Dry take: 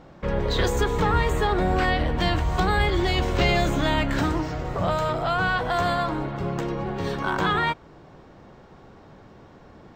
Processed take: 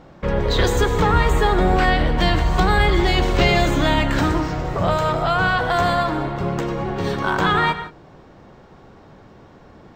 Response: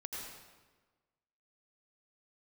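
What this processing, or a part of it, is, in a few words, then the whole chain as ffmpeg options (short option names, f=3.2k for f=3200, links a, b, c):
keyed gated reverb: -filter_complex "[0:a]asplit=3[a][b][c];[1:a]atrim=start_sample=2205[d];[b][d]afir=irnorm=-1:irlink=0[e];[c]apad=whole_len=438997[f];[e][f]sidechaingate=range=-33dB:threshold=-42dB:ratio=16:detection=peak,volume=-6dB[g];[a][g]amix=inputs=2:normalize=0,volume=2.5dB"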